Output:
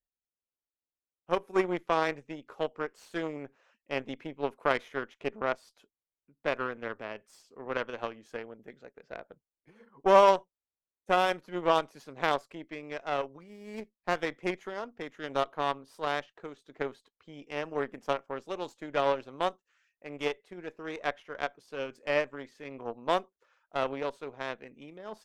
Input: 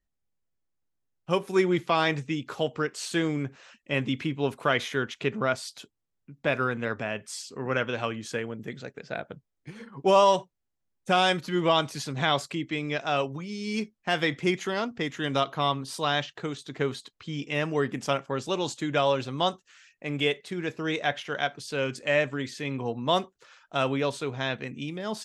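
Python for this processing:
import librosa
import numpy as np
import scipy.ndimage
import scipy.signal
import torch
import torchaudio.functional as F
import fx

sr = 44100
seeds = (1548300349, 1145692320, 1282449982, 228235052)

y = fx.cheby_harmonics(x, sr, harmonics=(3, 6, 7), levels_db=(-13, -32, -34), full_scale_db=-9.0)
y = fx.graphic_eq_10(y, sr, hz=(125, 500, 1000, 4000, 8000), db=(-9, 5, 3, -6, -7))
y = fx.running_max(y, sr, window=5, at=(13.4, 14.16))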